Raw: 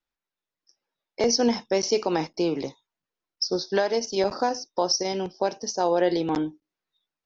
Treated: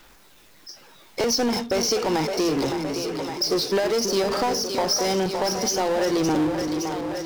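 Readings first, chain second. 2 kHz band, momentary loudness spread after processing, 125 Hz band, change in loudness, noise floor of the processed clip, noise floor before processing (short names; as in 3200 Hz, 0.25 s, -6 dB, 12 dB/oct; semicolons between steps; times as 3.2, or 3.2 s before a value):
+4.0 dB, 6 LU, +5.5 dB, +2.0 dB, -52 dBFS, under -85 dBFS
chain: compressor, threshold -24 dBFS, peak gain reduction 7.5 dB; phaser 0.3 Hz, delay 1.4 ms, feedback 21%; split-band echo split 410 Hz, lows 0.325 s, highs 0.564 s, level -10 dB; power-law curve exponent 0.5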